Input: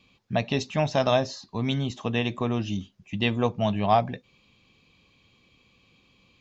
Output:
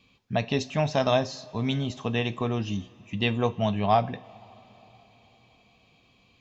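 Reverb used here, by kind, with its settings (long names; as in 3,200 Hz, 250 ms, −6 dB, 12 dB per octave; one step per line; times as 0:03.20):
coupled-rooms reverb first 0.33 s, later 4.5 s, from −20 dB, DRR 12.5 dB
level −1 dB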